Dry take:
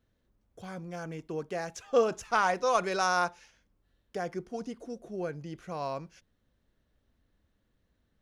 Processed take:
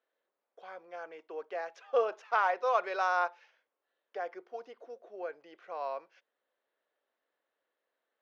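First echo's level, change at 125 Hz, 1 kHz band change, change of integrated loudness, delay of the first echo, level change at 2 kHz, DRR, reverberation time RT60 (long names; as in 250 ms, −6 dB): no echo audible, below −35 dB, −1.5 dB, −2.0 dB, no echo audible, −2.0 dB, no reverb audible, no reverb audible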